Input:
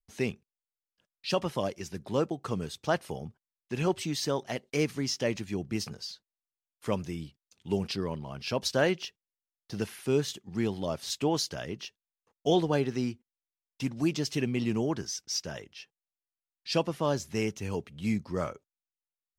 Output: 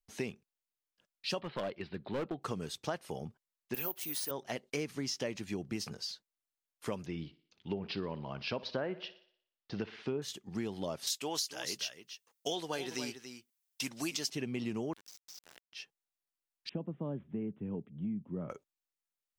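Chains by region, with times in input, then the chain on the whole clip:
1.41–2.42 elliptic low-pass 4200 Hz + overloaded stage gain 28 dB
3.74–4.31 HPF 500 Hz 6 dB/oct + careless resampling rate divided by 3×, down none, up zero stuff
7.06–10.22 treble ducked by the level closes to 1600 Hz, closed at -23 dBFS + LPF 4500 Hz 24 dB/oct + thinning echo 60 ms, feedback 50%, high-pass 170 Hz, level -18 dB
11.07–14.3 tilt +3.5 dB/oct + echo 0.283 s -13 dB
14.93–15.73 HPF 1000 Hz 6 dB/oct + compressor 4:1, threshold -50 dBFS + sample gate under -46 dBFS
16.69–18.5 band-pass 190 Hz, Q 1.5 + careless resampling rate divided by 6×, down none, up filtered + three-band squash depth 70%
whole clip: bell 67 Hz -7 dB 1.9 oct; compressor 6:1, threshold -33 dBFS

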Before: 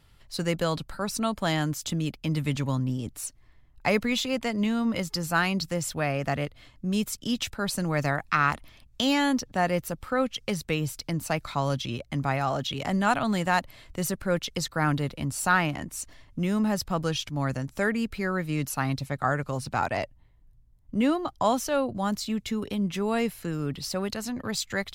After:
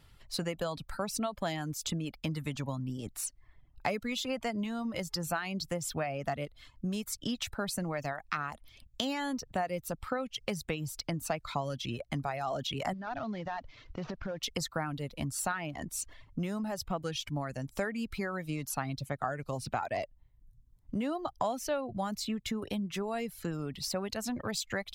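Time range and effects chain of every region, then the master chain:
12.93–14.43 CVSD 32 kbps + high shelf 4400 Hz -11.5 dB + compressor 12:1, threshold -32 dBFS
whole clip: compressor 6:1, threshold -31 dBFS; dynamic EQ 680 Hz, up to +5 dB, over -51 dBFS, Q 2.7; reverb removal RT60 0.72 s

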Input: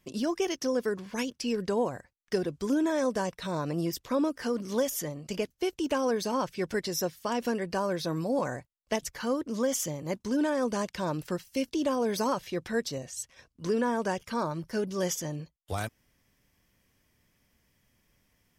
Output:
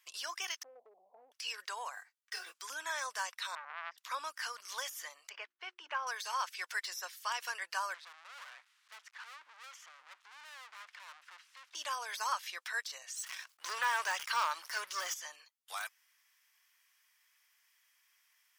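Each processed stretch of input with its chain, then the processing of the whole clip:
0.63–1.32 zero-crossing step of -33.5 dBFS + steep low-pass 760 Hz 72 dB/oct + compressor 2.5:1, threshold -30 dBFS
1.95–2.54 block floating point 7-bit + comb 2.6 ms, depth 75% + detuned doubles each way 48 cents
3.55–3.98 de-esser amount 90% + tape spacing loss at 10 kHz 44 dB + core saturation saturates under 1100 Hz
5.29–6.07 LPF 1900 Hz + notches 60/120/180/240/300/360 Hz
7.94–11.75 switching spikes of -33.5 dBFS + LPF 1700 Hz + tube stage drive 44 dB, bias 0.7
13.14–15.14 sample leveller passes 2 + sustainer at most 120 dB/s
whole clip: HPF 1100 Hz 24 dB/oct; de-esser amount 100%; gain +2 dB

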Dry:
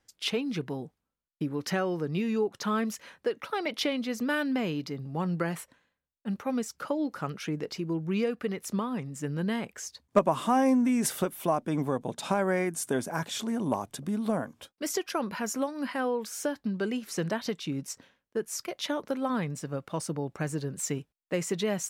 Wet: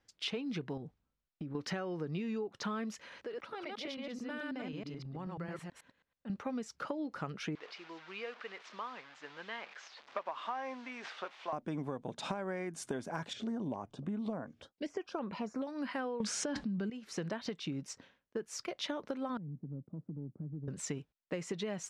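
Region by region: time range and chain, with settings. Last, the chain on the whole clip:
0.77–1.55 low shelf 150 Hz +10 dB + compressor 4:1, threshold -38 dBFS + decimation joined by straight lines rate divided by 2×
3–6.3 reverse delay 0.108 s, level -1 dB + compressor 2:1, threshold -46 dBFS
7.55–11.53 delta modulation 64 kbps, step -38.5 dBFS + HPF 910 Hz + air absorption 190 m
13.33–15.67 de-esser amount 95% + air absorption 61 m + stepped notch 7 Hz 990–4900 Hz
16.2–16.9 LPF 9900 Hz 24 dB/oct + bell 200 Hz +10.5 dB 0.49 oct + fast leveller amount 100%
19.37–20.68 Butterworth band-pass 180 Hz, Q 1 + compressor 4:1, threshold -37 dBFS
whole clip: LPF 5400 Hz 12 dB/oct; compressor 12:1, threshold -32 dBFS; gain -2 dB

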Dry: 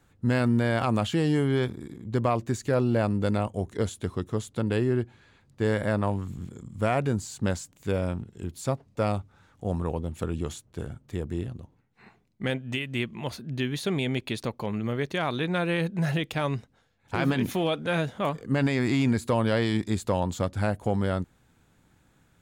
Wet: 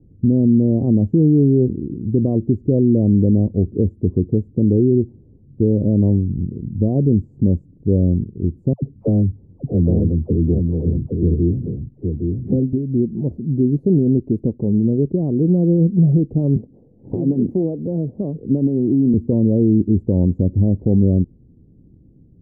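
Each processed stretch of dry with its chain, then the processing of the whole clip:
8.73–12.73 dispersion lows, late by 95 ms, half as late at 710 Hz + echo 0.816 s -4.5 dB
16.56–19.14 low shelf 310 Hz -10.5 dB + three-band squash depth 70%
whole clip: inverse Chebyshev low-pass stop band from 1300 Hz, stop band 60 dB; dynamic EQ 120 Hz, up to -5 dB, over -42 dBFS, Q 4.9; maximiser +21 dB; gain -6 dB

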